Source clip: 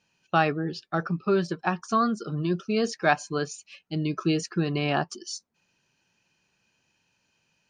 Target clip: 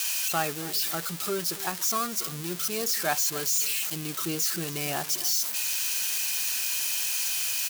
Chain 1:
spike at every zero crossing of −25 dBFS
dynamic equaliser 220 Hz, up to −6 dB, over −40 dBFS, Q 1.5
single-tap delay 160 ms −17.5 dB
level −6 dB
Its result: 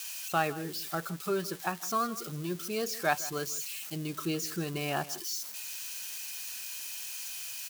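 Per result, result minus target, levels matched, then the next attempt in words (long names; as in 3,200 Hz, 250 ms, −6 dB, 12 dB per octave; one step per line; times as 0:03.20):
echo 120 ms early; spike at every zero crossing: distortion −11 dB
spike at every zero crossing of −25 dBFS
dynamic equaliser 220 Hz, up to −6 dB, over −40 dBFS, Q 1.5
single-tap delay 280 ms −17.5 dB
level −6 dB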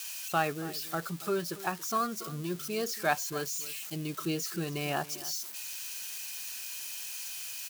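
spike at every zero crossing: distortion −11 dB
spike at every zero crossing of −13.5 dBFS
dynamic equaliser 220 Hz, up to −6 dB, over −40 dBFS, Q 1.5
single-tap delay 280 ms −17.5 dB
level −6 dB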